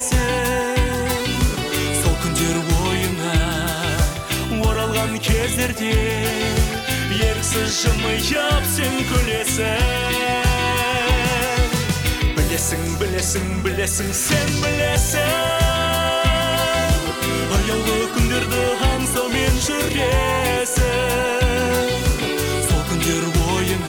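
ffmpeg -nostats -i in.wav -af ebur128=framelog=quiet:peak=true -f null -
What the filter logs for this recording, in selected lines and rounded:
Integrated loudness:
  I:         -19.1 LUFS
  Threshold: -29.1 LUFS
Loudness range:
  LRA:         1.7 LU
  Threshold: -39.1 LUFS
  LRA low:   -20.0 LUFS
  LRA high:  -18.3 LUFS
True peak:
  Peak:       -6.2 dBFS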